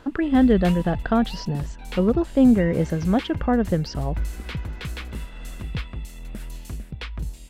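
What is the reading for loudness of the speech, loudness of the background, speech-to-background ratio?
−21.5 LKFS, −34.5 LKFS, 13.0 dB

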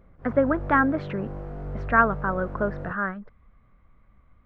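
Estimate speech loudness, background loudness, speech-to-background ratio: −25.0 LKFS, −36.5 LKFS, 11.5 dB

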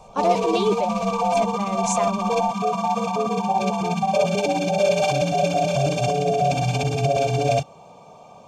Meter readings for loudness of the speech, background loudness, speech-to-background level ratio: −26.5 LKFS, −22.0 LKFS, −4.5 dB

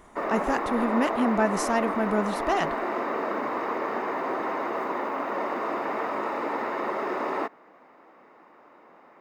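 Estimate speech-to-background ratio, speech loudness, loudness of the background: 2.0 dB, −27.5 LKFS, −29.5 LKFS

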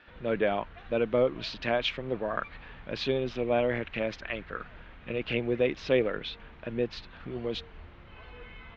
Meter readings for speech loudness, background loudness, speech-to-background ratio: −31.0 LKFS, −51.0 LKFS, 20.0 dB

